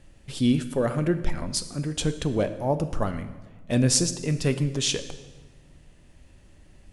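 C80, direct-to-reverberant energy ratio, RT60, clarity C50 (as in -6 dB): 14.0 dB, 10.0 dB, 1.3 s, 12.0 dB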